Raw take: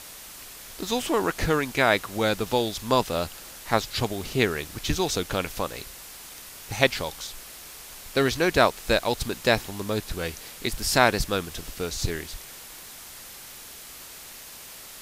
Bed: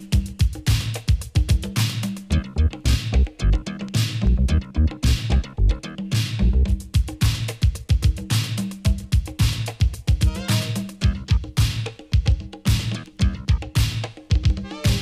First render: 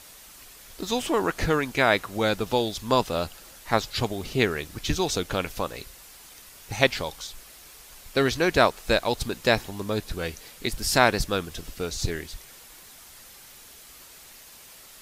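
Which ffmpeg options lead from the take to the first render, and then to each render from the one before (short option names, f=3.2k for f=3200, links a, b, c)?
-af "afftdn=nr=6:nf=-43"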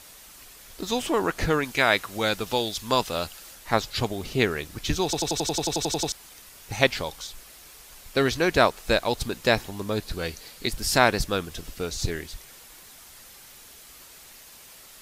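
-filter_complex "[0:a]asettb=1/sr,asplit=3[a][b][c];[a]atrim=end=1.644[d];[b]atrim=start=1.64:end=3.55,asetpts=PTS-STARTPTS,afade=t=in:d=0.004:c=qsin,afade=t=out:st=1.906:d=0.004:c=qsin,tiltshelf=f=1.2k:g=-3.5[e];[c]atrim=start=3.546[f];[d][e]acrossfade=d=0.004:c1=hsin:c2=qsin[g];[g][f]acrossfade=d=0.004:c1=qsin:c2=hsin,asettb=1/sr,asplit=3[h][i][j];[h]atrim=end=10.014[k];[i]atrim=start=10.01:end=10.7,asetpts=PTS-STARTPTS,afade=t=in:d=0.004:c=qsin,afade=t=out:st=0.686:d=0.004:c=qsin,equalizer=f=4.4k:t=o:w=0.24:g=6.5[l];[j]atrim=start=10.696[m];[k][l]acrossfade=d=0.004:c1=hsin:c2=qsin[n];[n][m]acrossfade=d=0.004:c1=qsin:c2=hsin,asplit=13[o][p][q][r][s][t][u][v][w][x][y][z][aa];[o]atrim=end=5.132[ab];[p]atrim=start=5.038:end=5.132[ac];[q]atrim=start=5.038:end=5.132[ad];[r]atrim=start=5.038:end=5.132[ae];[s]atrim=start=5.038:end=5.132[af];[t]atrim=start=5.038:end=5.132[ag];[u]atrim=start=5.038:end=5.132[ah];[v]atrim=start=5.038:end=5.132[ai];[w]atrim=start=5.038:end=5.132[aj];[x]atrim=start=5.038:end=5.132[ak];[y]atrim=start=5.038:end=5.132[al];[z]atrim=start=5.038:end=5.132[am];[aa]atrim=start=6.118[an];[ab][ac]acrossfade=d=0.004:c1=hsin:c2=hsin[ao];[ao][ad]acrossfade=d=0.004:c1=hsin:c2=hsin[ap];[ap][ae]acrossfade=d=0.004:c1=hsin:c2=hsin[aq];[aq][af]acrossfade=d=0.004:c1=hsin:c2=hsin[ar];[ar][ag]acrossfade=d=0.004:c1=hsin:c2=hsin[as];[as][ah]acrossfade=d=0.004:c1=hsin:c2=hsin[at];[at][ai]acrossfade=d=0.004:c1=hsin:c2=hsin[au];[au][aj]acrossfade=d=0.004:c1=hsin:c2=hsin[av];[av][ak]acrossfade=d=0.004:c1=hsin:c2=hsin[aw];[aw][al]acrossfade=d=0.004:c1=hsin:c2=hsin[ax];[ax][am]acrossfade=d=0.004:c1=hsin:c2=hsin[ay];[ay][an]acrossfade=d=0.004:c1=hsin:c2=hsin"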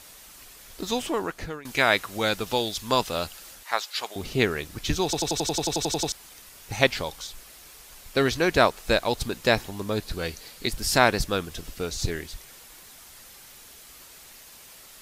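-filter_complex "[0:a]asettb=1/sr,asplit=3[a][b][c];[a]atrim=end=3.634[d];[b]atrim=start=3.63:end=4.16,asetpts=PTS-STARTPTS,afade=t=in:d=0.004:c=qsin,afade=t=out:st=0.526:d=0.004:c=qsin,highpass=840[e];[c]atrim=start=4.156[f];[d][e]acrossfade=d=0.004:c1=hsin:c2=qsin[g];[g][f]acrossfade=d=0.004:c1=qsin:c2=hsin,asplit=2[h][i];[h]atrim=end=1.65,asetpts=PTS-STARTPTS,afade=t=out:st=0.89:d=0.76:silence=0.0944061[j];[i]atrim=start=1.65,asetpts=PTS-STARTPTS,afade=t=in:d=0.004:c=hsin:silence=0.0944061[k];[j][k]concat=n=2:v=0:a=1"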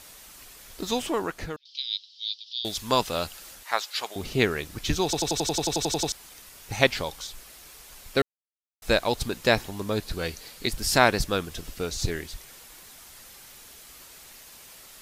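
-filter_complex "[0:a]asettb=1/sr,asplit=3[a][b][c];[a]atrim=end=1.564[d];[b]atrim=start=1.56:end=2.65,asetpts=PTS-STARTPTS,afade=t=in:d=0.004:c=qsin,afade=t=out:st=1.086:d=0.004:c=qsin,asuperpass=centerf=4100:order=8:qfactor=1.9[e];[c]atrim=start=2.646[f];[d][e]acrossfade=d=0.004:c1=hsin:c2=qsin[g];[g][f]acrossfade=d=0.004:c1=qsin:c2=hsin,asplit=3[h][i][j];[h]atrim=end=8.22,asetpts=PTS-STARTPTS,afade=t=out:st=8.216:d=0.004:c=hsin[k];[i]atrim=start=8.22:end=8.82,asetpts=PTS-STARTPTS,volume=0[l];[j]atrim=start=8.82,asetpts=PTS-STARTPTS,afade=t=in:d=0.004:c=hsin[m];[k][l][m]concat=n=3:v=0:a=1"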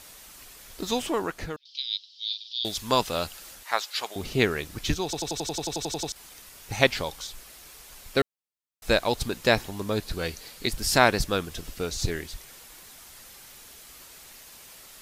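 -filter_complex "[0:a]asettb=1/sr,asplit=3[a][b][c];[a]atrim=end=2.264[d];[b]atrim=start=2.26:end=2.67,asetpts=PTS-STARTPTS,afade=t=in:d=0.004:c=qsin,afade=t=out:st=0.406:d=0.004:c=qsin,asplit=2[e][f];[f]adelay=42,volume=-5dB[g];[e][g]amix=inputs=2:normalize=0,atrim=end_sample=18081[h];[c]atrim=start=2.666[i];[d][h]acrossfade=d=0.004:c1=hsin:c2=qsin[j];[j][i]acrossfade=d=0.004:c1=qsin:c2=hsin,asplit=3[k][l][m];[k]atrim=end=4.942[n];[l]atrim=start=4.938:end=6.162,asetpts=PTS-STARTPTS,volume=-4.5dB[o];[m]atrim=start=6.158[p];[n][o]acrossfade=d=0.004:c1=hsin:c2=hsin[q];[q][p]acrossfade=d=0.004:c1=hsin:c2=hsin"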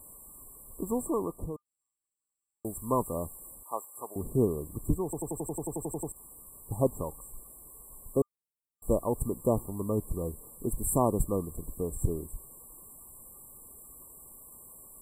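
-af "equalizer=f=770:t=o:w=0.93:g=-9,afftfilt=real='re*(1-between(b*sr/4096,1200,7400))':imag='im*(1-between(b*sr/4096,1200,7400))':win_size=4096:overlap=0.75"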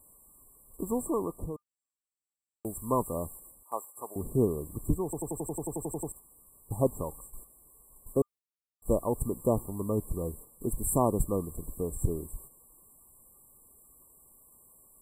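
-af "agate=range=-8dB:threshold=-46dB:ratio=16:detection=peak"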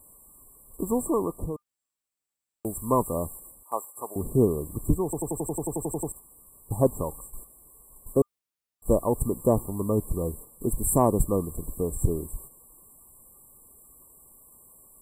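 -af "acontrast=23"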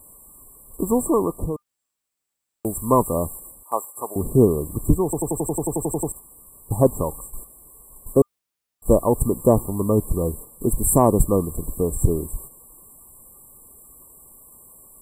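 -af "volume=6dB,alimiter=limit=-3dB:level=0:latency=1"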